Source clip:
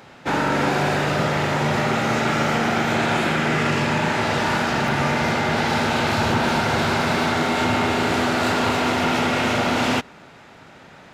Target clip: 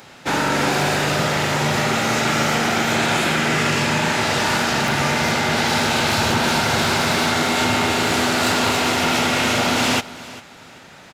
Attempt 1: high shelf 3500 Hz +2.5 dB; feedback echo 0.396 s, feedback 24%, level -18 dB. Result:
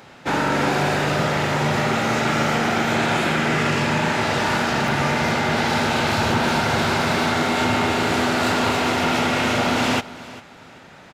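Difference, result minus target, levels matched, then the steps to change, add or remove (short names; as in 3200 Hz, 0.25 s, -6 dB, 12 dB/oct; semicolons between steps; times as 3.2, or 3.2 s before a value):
8000 Hz band -5.5 dB
change: high shelf 3500 Hz +11.5 dB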